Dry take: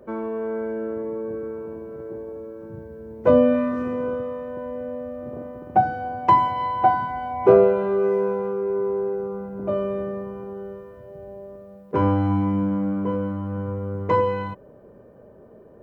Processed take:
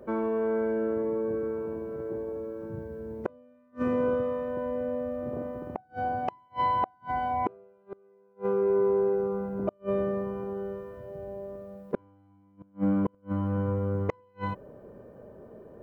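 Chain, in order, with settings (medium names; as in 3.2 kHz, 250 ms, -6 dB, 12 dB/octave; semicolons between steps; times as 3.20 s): inverted gate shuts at -16 dBFS, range -39 dB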